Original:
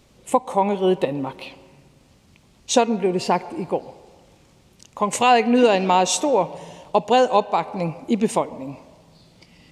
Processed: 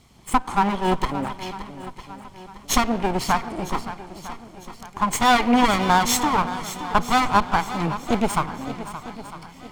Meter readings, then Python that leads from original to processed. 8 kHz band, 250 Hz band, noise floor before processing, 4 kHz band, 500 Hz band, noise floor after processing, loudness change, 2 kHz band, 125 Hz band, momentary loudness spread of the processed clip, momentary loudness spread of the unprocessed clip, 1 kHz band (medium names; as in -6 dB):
0.0 dB, -0.5 dB, -55 dBFS, +1.0 dB, -8.5 dB, -46 dBFS, -1.5 dB, +4.0 dB, +2.0 dB, 21 LU, 13 LU, +0.5 dB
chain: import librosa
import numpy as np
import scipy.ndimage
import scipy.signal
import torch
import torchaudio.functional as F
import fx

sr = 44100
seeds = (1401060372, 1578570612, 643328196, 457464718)

p1 = fx.lower_of_two(x, sr, delay_ms=0.94)
p2 = p1 + fx.echo_swing(p1, sr, ms=953, ratio=1.5, feedback_pct=39, wet_db=-13, dry=0)
y = p2 * 10.0 ** (2.0 / 20.0)